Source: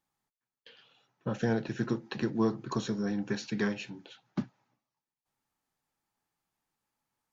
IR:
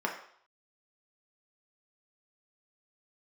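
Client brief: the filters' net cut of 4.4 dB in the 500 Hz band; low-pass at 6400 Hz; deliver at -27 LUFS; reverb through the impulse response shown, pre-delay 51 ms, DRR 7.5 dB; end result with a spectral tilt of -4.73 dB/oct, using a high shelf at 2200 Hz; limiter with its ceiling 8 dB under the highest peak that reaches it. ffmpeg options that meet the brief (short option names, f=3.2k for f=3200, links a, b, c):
-filter_complex "[0:a]lowpass=6.4k,equalizer=f=500:t=o:g=-6,highshelf=f=2.2k:g=5.5,alimiter=level_in=1.5dB:limit=-24dB:level=0:latency=1,volume=-1.5dB,asplit=2[a][b];[1:a]atrim=start_sample=2205,adelay=51[c];[b][c]afir=irnorm=-1:irlink=0,volume=-15.5dB[d];[a][d]amix=inputs=2:normalize=0,volume=9.5dB"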